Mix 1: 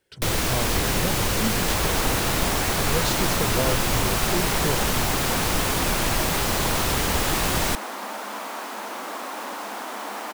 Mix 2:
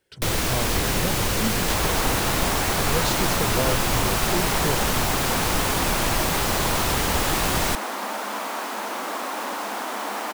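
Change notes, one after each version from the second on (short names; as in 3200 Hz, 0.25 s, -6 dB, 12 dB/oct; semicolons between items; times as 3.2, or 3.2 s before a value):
second sound +3.5 dB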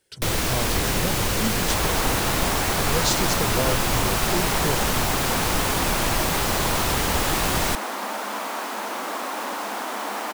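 speech: add tone controls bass 0 dB, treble +10 dB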